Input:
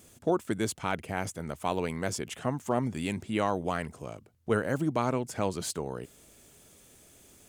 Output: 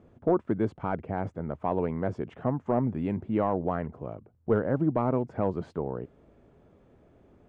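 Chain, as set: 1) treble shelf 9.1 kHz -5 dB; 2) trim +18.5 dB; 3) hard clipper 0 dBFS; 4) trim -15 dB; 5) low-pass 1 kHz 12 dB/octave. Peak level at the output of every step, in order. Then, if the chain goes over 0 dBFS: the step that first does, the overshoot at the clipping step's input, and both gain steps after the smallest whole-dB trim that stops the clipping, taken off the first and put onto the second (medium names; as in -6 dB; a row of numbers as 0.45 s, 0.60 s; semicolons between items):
-15.0 dBFS, +3.5 dBFS, 0.0 dBFS, -15.0 dBFS, -14.5 dBFS; step 2, 3.5 dB; step 2 +14.5 dB, step 4 -11 dB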